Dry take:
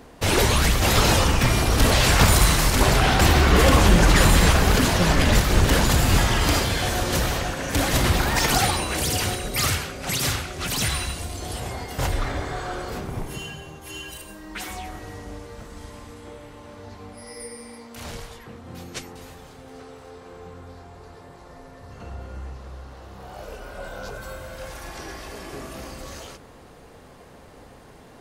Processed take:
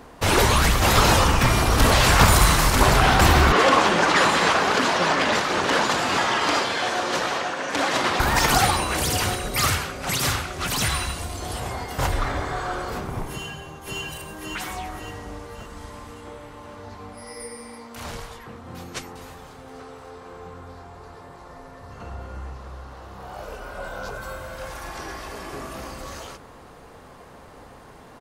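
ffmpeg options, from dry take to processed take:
ffmpeg -i in.wav -filter_complex "[0:a]asettb=1/sr,asplit=3[link_01][link_02][link_03];[link_01]atrim=end=3.524[link_04];[link_02]atrim=start=3.52:end=8.2,asetpts=PTS-STARTPTS,afade=type=in:duration=0.004:curve=qsin,afade=type=out:start_time=4.676:duration=0.004:curve=qsin,highpass=300,lowpass=6000[link_05];[link_03]atrim=start=8.196[link_06];[link_04][link_05]acrossfade=duration=0.004:curve1=hsin:curve2=qsin[link_07];[link_07][link_06]acrossfade=duration=0.004:curve1=qsin:curve2=hsin,asplit=2[link_08][link_09];[link_09]afade=type=in:start_time=13.32:duration=0.01,afade=type=out:start_time=14:duration=0.01,aecho=0:1:550|1100|1650|2200|2750|3300:0.794328|0.357448|0.160851|0.0723832|0.0325724|0.0146576[link_10];[link_08][link_10]amix=inputs=2:normalize=0,equalizer=frequency=1100:width=1.2:gain=5.5" out.wav

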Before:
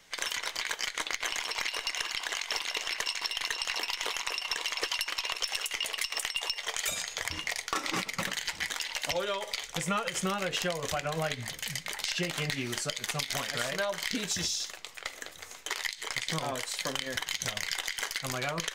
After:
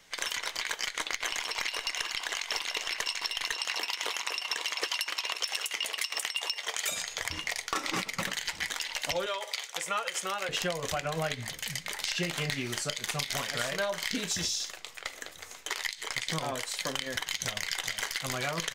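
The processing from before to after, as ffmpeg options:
ffmpeg -i in.wav -filter_complex "[0:a]asettb=1/sr,asplit=3[link_01][link_02][link_03];[link_01]atrim=end=3.524[link_04];[link_02]atrim=start=3.52:end=6.96,asetpts=PTS-STARTPTS,afade=type=in:duration=0.004:curve=qsin,afade=type=out:start_time=3.436:duration=0.004:curve=qsin,highpass=170[link_05];[link_03]atrim=start=6.956[link_06];[link_04][link_05]acrossfade=duration=0.004:curve1=hsin:curve2=qsin[link_07];[link_07][link_06]acrossfade=duration=0.004:curve1=qsin:curve2=hsin,asettb=1/sr,asplit=3[link_08][link_09][link_10];[link_08]atrim=end=9.264[link_11];[link_09]atrim=start=9.26:end=10.49,asetpts=PTS-STARTPTS,afade=type=in:duration=0.004:curve=qsin,afade=type=out:start_time=1.226:duration=0.004:curve=qsin,highpass=520[link_12];[link_10]atrim=start=10.486[link_13];[link_11][link_12]acrossfade=duration=0.004:curve1=hsin:curve2=qsin[link_14];[link_14][link_13]acrossfade=duration=0.004:curve1=qsin:curve2=hsin,asettb=1/sr,asplit=3[link_15][link_16][link_17];[link_15]atrim=end=11.804[link_18];[link_16]atrim=start=11.8:end=14.99,asetpts=PTS-STARTPTS,afade=type=in:duration=0.004:curve=qsin,afade=type=out:start_time=3.186:duration=0.004:curve=qsin,asplit=2[link_19][link_20];[link_20]adelay=35,volume=-13dB[link_21];[link_19][link_21]amix=inputs=2:normalize=0,atrim=end_sample=140679[link_22];[link_17]atrim=start=14.986[link_23];[link_18][link_22]acrossfade=duration=0.004:curve1=hsin:curve2=qsin[link_24];[link_24][link_23]acrossfade=duration=0.004:curve1=qsin:curve2=hsin,asplit=2[link_25][link_26];[link_26]afade=type=in:start_time=17.41:duration=0.01,afade=type=out:start_time=18.23:duration=0.01,aecho=0:1:420|840|1260|1680|2100|2520|2940|3360|3780:0.334965|0.217728|0.141523|0.0919899|0.0597934|0.0388657|0.0252627|0.0164208|0.0106735[link_27];[link_25][link_27]amix=inputs=2:normalize=0" out.wav

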